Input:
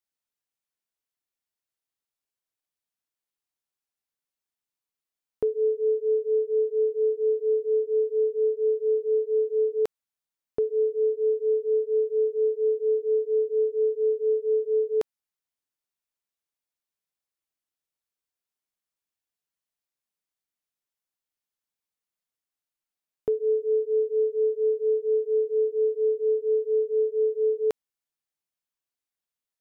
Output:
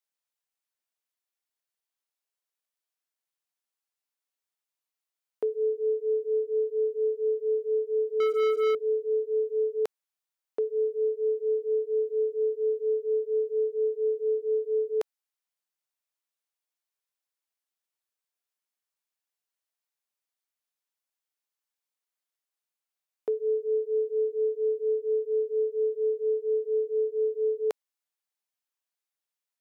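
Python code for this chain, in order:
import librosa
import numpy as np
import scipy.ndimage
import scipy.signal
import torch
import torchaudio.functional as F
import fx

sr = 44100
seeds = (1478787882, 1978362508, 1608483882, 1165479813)

y = scipy.signal.sosfilt(scipy.signal.butter(2, 440.0, 'highpass', fs=sr, output='sos'), x)
y = fx.leveller(y, sr, passes=3, at=(8.2, 8.75))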